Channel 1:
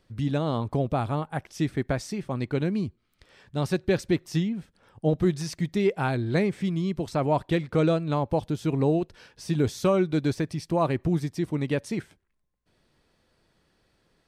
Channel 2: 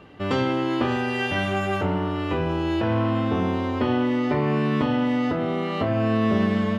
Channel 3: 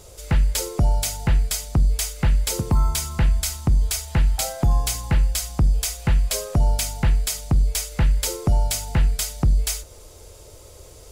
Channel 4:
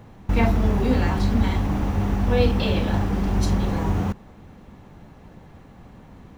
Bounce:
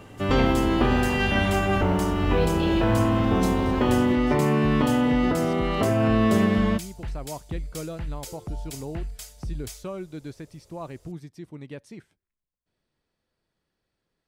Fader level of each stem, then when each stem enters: -12.5, +1.0, -15.0, -8.0 dB; 0.00, 0.00, 0.00, 0.00 s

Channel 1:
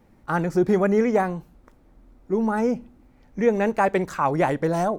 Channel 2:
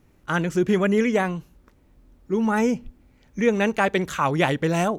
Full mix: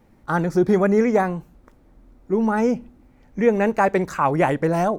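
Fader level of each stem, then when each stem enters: +1.0, -13.0 dB; 0.00, 0.00 s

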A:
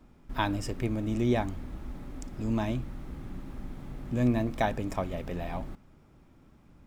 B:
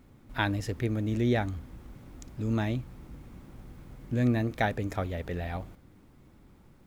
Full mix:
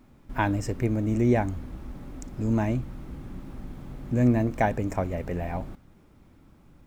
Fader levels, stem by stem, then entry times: -0.5, -2.5 dB; 0.00, 0.00 s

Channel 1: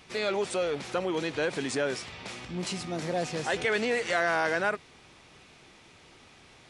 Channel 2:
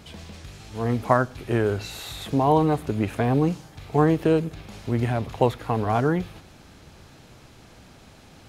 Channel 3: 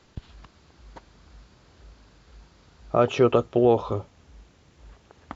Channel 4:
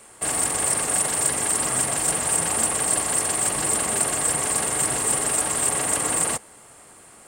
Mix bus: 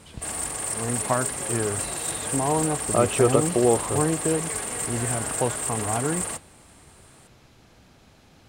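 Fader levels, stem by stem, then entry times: -13.5, -5.0, -1.0, -7.0 dB; 0.85, 0.00, 0.00, 0.00 s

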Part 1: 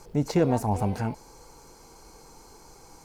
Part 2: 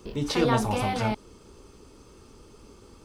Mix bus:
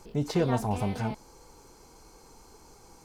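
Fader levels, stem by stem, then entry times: -4.0, -11.0 dB; 0.00, 0.00 s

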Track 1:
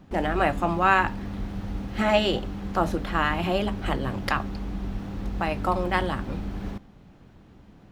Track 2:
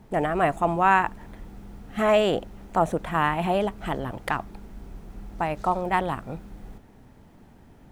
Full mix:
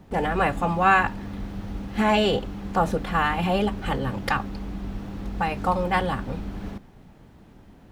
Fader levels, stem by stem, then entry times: -0.5, -2.5 dB; 0.00, 0.00 s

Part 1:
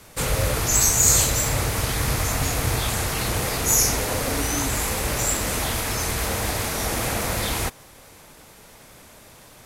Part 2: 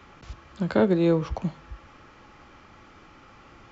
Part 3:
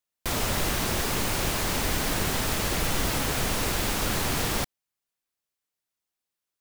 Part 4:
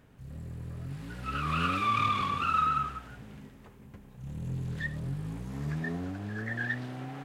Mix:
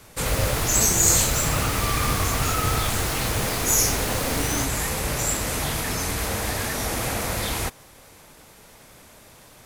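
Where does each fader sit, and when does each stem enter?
-1.5, -13.0, -3.5, -3.0 dB; 0.00, 0.00, 0.00, 0.00 s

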